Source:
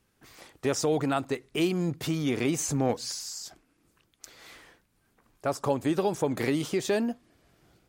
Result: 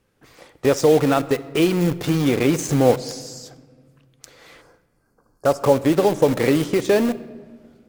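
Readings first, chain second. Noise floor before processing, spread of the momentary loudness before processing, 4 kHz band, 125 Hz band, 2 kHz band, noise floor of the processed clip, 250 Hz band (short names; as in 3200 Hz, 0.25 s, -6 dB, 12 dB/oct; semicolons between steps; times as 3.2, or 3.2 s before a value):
-71 dBFS, 9 LU, +5.5 dB, +9.0 dB, +8.0 dB, -65 dBFS, +9.0 dB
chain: spectral delete 4.61–5.75, 1700–4200 Hz; high shelf 3900 Hz -6 dB; modulation noise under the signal 30 dB; small resonant body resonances 510 Hz, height 8 dB, ringing for 35 ms; in parallel at -4.5 dB: bit-crush 5-bit; on the sum: shoebox room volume 1800 m³, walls mixed, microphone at 0.36 m; gain +4 dB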